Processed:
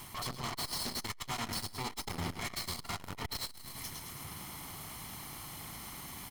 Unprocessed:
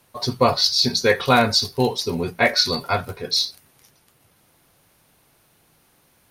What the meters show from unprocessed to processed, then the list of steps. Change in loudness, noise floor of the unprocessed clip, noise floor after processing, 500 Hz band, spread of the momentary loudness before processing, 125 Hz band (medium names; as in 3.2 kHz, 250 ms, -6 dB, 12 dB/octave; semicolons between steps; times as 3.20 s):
-20.0 dB, -60 dBFS, -50 dBFS, -26.0 dB, 9 LU, -14.5 dB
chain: comb filter that takes the minimum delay 0.95 ms; reverse; compression 16:1, threshold -32 dBFS, peak gain reduction 21.5 dB; reverse; peak limiter -31.5 dBFS, peak gain reduction 9.5 dB; in parallel at -7.5 dB: sine folder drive 15 dB, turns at -31 dBFS; on the sum: feedback delay 106 ms, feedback 55%, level -6.5 dB; transformer saturation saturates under 210 Hz; trim +1.5 dB